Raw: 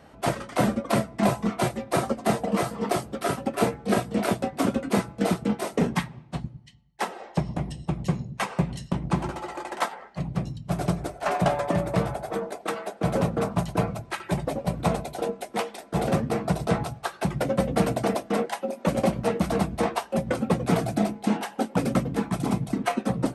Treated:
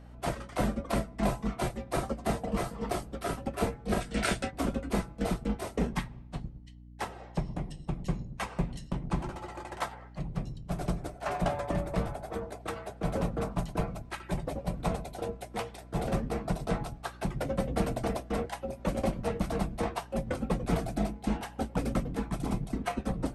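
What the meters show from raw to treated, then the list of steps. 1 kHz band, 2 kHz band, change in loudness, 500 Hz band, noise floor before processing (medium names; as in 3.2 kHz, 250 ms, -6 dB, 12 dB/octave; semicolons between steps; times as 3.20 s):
-7.5 dB, -6.5 dB, -7.0 dB, -7.5 dB, -49 dBFS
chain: octave divider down 2 oct, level -2 dB; hum 60 Hz, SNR 17 dB; time-frequency box 4.01–4.51 s, 1.3–10 kHz +10 dB; trim -7.5 dB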